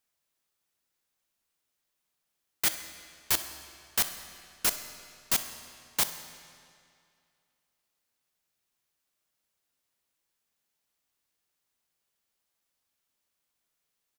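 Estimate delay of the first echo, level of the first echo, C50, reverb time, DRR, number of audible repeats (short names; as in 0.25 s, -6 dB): 64 ms, -18.0 dB, 9.5 dB, 2.3 s, 8.5 dB, 1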